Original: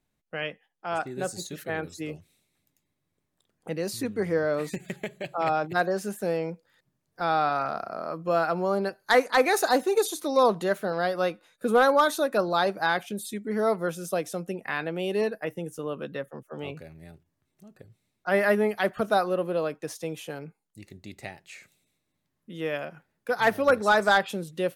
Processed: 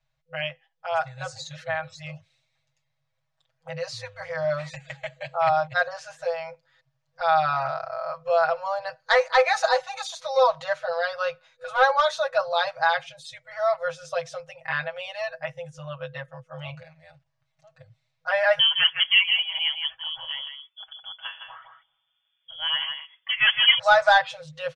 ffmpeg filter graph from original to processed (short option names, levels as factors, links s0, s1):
-filter_complex "[0:a]asettb=1/sr,asplit=3[s0][s1][s2];[s0]atrim=end=18.594[s3];[s1]atrim=start=18.59:end=23.79,asetpts=PTS-STARTPTS,afade=t=in:d=0.004:c=qsin,afade=t=out:st=5.196:d=0.004:c=qsin,aecho=1:1:161:0.447,atrim=end_sample=229320,lowpass=f=3000:t=q:w=0.5098,lowpass=f=3000:t=q:w=0.6013,lowpass=f=3000:t=q:w=0.9,lowpass=f=3000:t=q:w=2.563,afreqshift=-3500[s4];[s2]atrim=start=23.786[s5];[s3][s4]acrossfade=d=0.004:c1=hsin:c2=qsin[s6];[s6][s5]acrossfade=d=0.004:c1=qsin:c2=hsin,lowpass=f=5900:w=0.5412,lowpass=f=5900:w=1.3066,afftfilt=real='re*(1-between(b*sr/4096,160,500))':imag='im*(1-between(b*sr/4096,160,500))':win_size=4096:overlap=0.75,aecho=1:1:6.2:0.97"